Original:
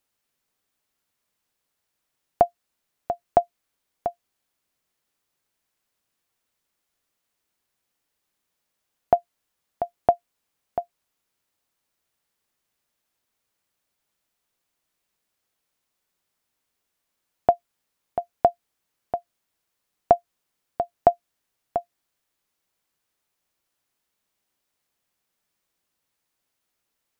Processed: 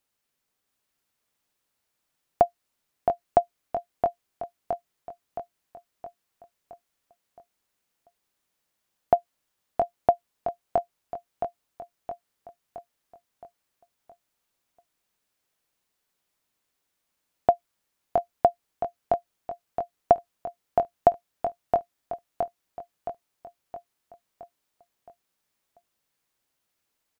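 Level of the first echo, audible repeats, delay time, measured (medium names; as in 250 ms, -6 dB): -5.0 dB, 6, 668 ms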